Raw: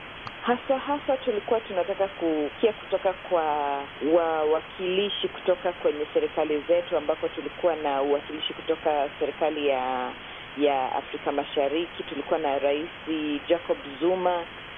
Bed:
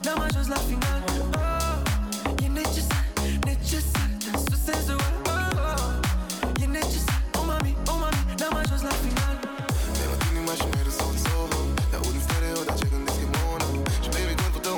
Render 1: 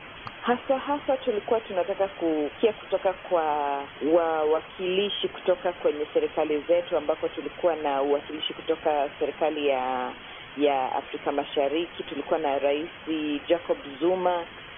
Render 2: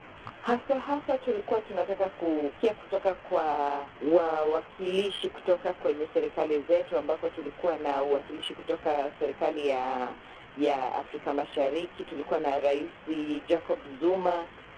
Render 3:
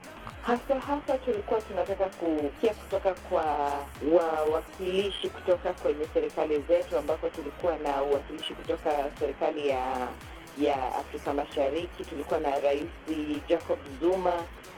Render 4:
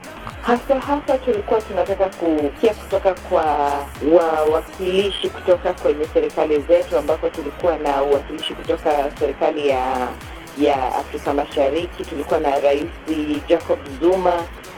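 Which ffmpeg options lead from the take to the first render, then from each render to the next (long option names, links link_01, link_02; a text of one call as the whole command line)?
ffmpeg -i in.wav -af "afftdn=noise_reduction=8:noise_floor=-41" out.wav
ffmpeg -i in.wav -af "flanger=delay=15.5:depth=5.7:speed=2.6,adynamicsmooth=sensitivity=4:basefreq=1800" out.wav
ffmpeg -i in.wav -i bed.wav -filter_complex "[1:a]volume=-22dB[link_01];[0:a][link_01]amix=inputs=2:normalize=0" out.wav
ffmpeg -i in.wav -af "volume=10dB,alimiter=limit=-2dB:level=0:latency=1" out.wav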